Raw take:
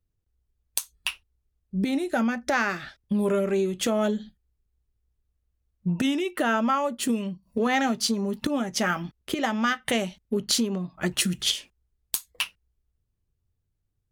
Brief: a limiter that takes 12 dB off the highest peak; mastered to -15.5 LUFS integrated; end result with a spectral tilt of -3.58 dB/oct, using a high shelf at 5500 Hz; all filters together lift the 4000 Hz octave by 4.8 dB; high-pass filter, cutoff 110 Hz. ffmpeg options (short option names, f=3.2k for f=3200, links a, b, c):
-af "highpass=110,equalizer=f=4k:t=o:g=4,highshelf=f=5.5k:g=5.5,volume=11.5dB,alimiter=limit=-3dB:level=0:latency=1"